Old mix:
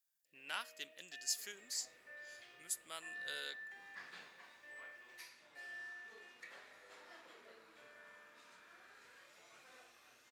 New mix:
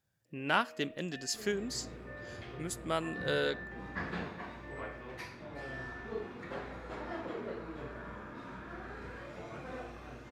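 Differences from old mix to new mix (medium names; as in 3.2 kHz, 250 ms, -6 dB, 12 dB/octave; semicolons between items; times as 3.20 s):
first sound -9.0 dB; master: remove differentiator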